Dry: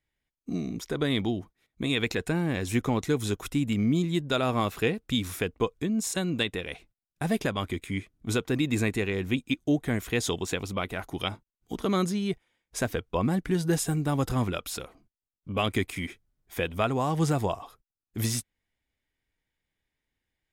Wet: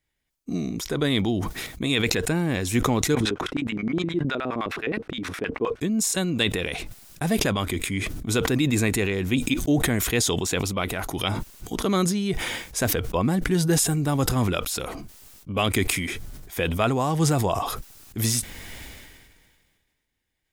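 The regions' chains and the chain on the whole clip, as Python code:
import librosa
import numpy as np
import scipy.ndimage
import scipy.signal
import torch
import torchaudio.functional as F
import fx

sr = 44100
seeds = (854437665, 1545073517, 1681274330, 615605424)

y = fx.chain(x, sr, fx.high_shelf(hz=6500.0, db=-7.5),
    fx.notch(hz=7100.0, q=15.0),
    fx.filter_lfo_bandpass(shape='square', hz=9.6, low_hz=330.0, high_hz=1700.0, q=1.4), at=(3.15, 5.81))
y = fx.bass_treble(y, sr, bass_db=0, treble_db=4)
y = fx.sustainer(y, sr, db_per_s=33.0)
y = F.gain(torch.from_numpy(y), 3.0).numpy()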